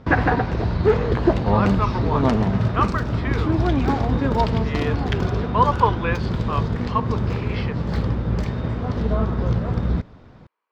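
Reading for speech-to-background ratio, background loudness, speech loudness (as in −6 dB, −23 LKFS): −4.5 dB, −22.5 LKFS, −27.0 LKFS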